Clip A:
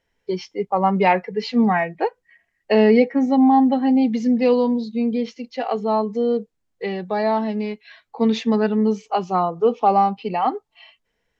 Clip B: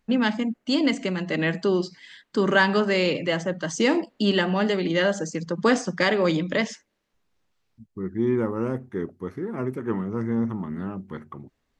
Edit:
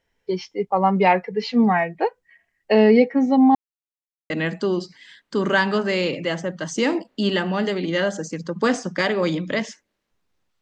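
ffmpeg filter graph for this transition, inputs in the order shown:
ffmpeg -i cue0.wav -i cue1.wav -filter_complex "[0:a]apad=whole_dur=10.61,atrim=end=10.61,asplit=2[link_01][link_02];[link_01]atrim=end=3.55,asetpts=PTS-STARTPTS,afade=type=out:start_time=3.546:duration=0.004:curve=hsin[link_03];[link_02]atrim=start=3.55:end=4.3,asetpts=PTS-STARTPTS,volume=0[link_04];[1:a]atrim=start=1.32:end=7.63,asetpts=PTS-STARTPTS,afade=type=in:duration=0.004:curve=hsin[link_05];[link_03][link_04][link_05]concat=n=3:v=0:a=1" out.wav

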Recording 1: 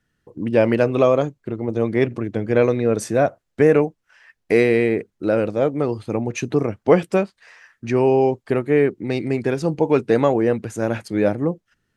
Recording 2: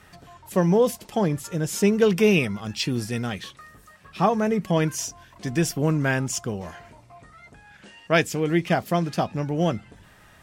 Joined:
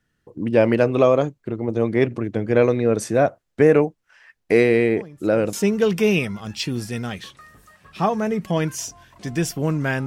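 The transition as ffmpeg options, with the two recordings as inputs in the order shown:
ffmpeg -i cue0.wav -i cue1.wav -filter_complex "[1:a]asplit=2[link_01][link_02];[0:a]apad=whole_dur=10.06,atrim=end=10.06,atrim=end=5.532[link_03];[link_02]atrim=start=1.728:end=6.26[link_04];[link_01]atrim=start=1.16:end=1.73,asetpts=PTS-STARTPTS,volume=-18dB,afade=type=in:duration=0.004:curve=hsin,afade=type=out:start_time=0.566:duration=0.004:curve=hsin,adelay=4960[link_05];[link_03][link_04]acrossfade=duration=0.004:curve1=hsin:curve2=hsin[link_06];[link_06][link_05]amix=inputs=2:normalize=0" out.wav

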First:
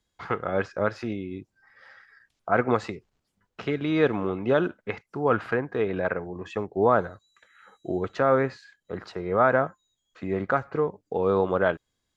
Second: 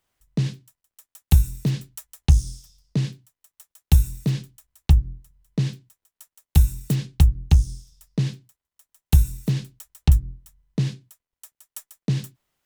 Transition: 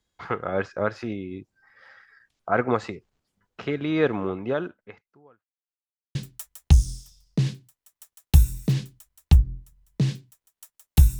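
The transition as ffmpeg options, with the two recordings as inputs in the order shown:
ffmpeg -i cue0.wav -i cue1.wav -filter_complex "[0:a]apad=whole_dur=11.19,atrim=end=11.19,asplit=2[link_01][link_02];[link_01]atrim=end=5.47,asetpts=PTS-STARTPTS,afade=type=out:start_time=4.28:duration=1.19:curve=qua[link_03];[link_02]atrim=start=5.47:end=6.15,asetpts=PTS-STARTPTS,volume=0[link_04];[1:a]atrim=start=1.73:end=6.77,asetpts=PTS-STARTPTS,afade=type=in:duration=0.004:curve=hsin[link_05];[link_03][link_04][link_05]concat=n=3:v=0:a=1" out.wav

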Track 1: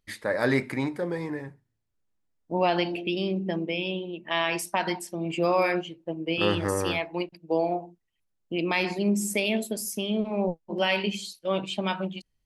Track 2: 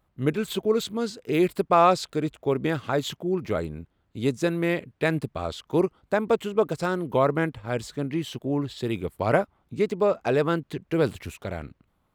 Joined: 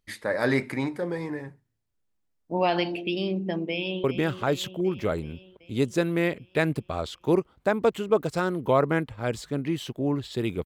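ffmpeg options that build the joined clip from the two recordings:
ffmpeg -i cue0.wav -i cue1.wav -filter_complex "[0:a]apad=whole_dur=10.65,atrim=end=10.65,atrim=end=4.042[link_01];[1:a]atrim=start=2.498:end=9.11[link_02];[link_01][link_02]acrossfade=duration=0.004:curve1=hsin:curve2=hsin,asplit=2[link_03][link_04];[link_04]afade=type=in:start_time=3.7:duration=0.01,afade=type=out:start_time=4.04:duration=0.01,aecho=0:1:380|760|1140|1520|1900|2280|2660|3040|3420:0.316228|0.205548|0.133606|0.0868441|0.0564486|0.0366916|0.0238495|0.0155022|0.0100764[link_05];[link_03][link_05]amix=inputs=2:normalize=0" out.wav

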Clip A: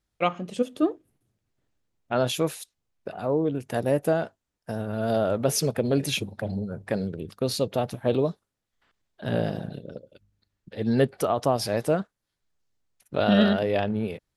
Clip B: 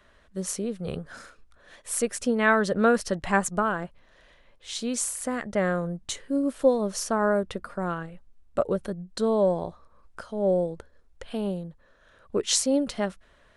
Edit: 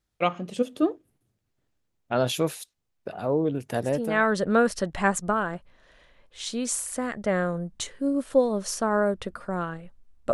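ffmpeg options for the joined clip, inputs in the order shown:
ffmpeg -i cue0.wav -i cue1.wav -filter_complex "[0:a]apad=whole_dur=10.33,atrim=end=10.33,atrim=end=4.33,asetpts=PTS-STARTPTS[link_01];[1:a]atrim=start=2.04:end=8.62,asetpts=PTS-STARTPTS[link_02];[link_01][link_02]acrossfade=duration=0.58:curve1=tri:curve2=tri" out.wav

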